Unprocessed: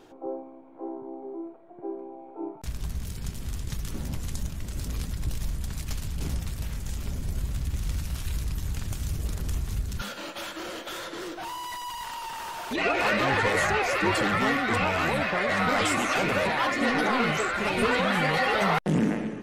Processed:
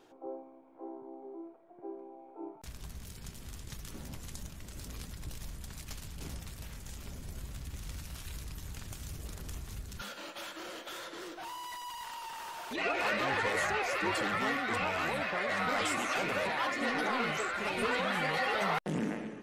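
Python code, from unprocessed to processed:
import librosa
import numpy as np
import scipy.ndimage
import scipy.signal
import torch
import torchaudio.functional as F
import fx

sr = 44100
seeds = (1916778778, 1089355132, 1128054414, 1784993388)

y = fx.low_shelf(x, sr, hz=220.0, db=-7.5)
y = F.gain(torch.from_numpy(y), -6.5).numpy()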